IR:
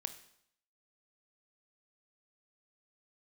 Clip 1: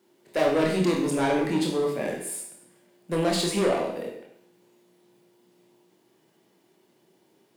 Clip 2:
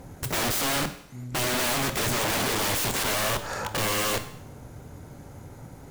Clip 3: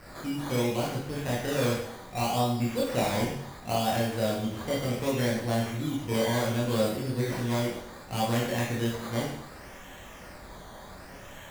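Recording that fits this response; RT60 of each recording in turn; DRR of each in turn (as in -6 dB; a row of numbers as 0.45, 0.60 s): 2; 0.70, 0.70, 0.70 s; -0.5, 9.5, -5.0 dB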